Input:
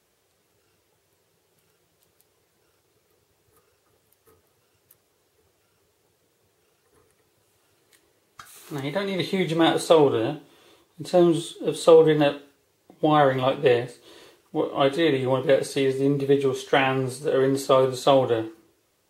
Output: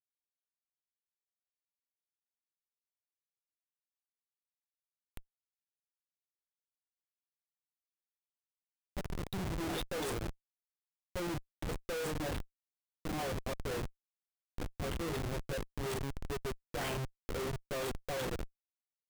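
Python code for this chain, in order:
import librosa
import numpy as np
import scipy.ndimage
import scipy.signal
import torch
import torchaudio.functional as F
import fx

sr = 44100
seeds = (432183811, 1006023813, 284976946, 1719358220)

y = fx.spec_delay(x, sr, highs='late', ms=262)
y = librosa.effects.preemphasis(y, coef=0.8, zi=[0.0])
y = fx.schmitt(y, sr, flips_db=-32.5)
y = y * 10.0 ** (2.0 / 20.0)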